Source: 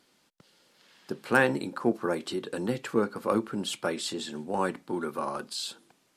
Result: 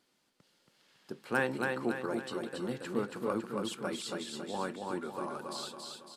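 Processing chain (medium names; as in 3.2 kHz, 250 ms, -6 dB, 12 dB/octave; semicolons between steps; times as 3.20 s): feedback delay 277 ms, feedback 48%, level -3.5 dB; trim -8 dB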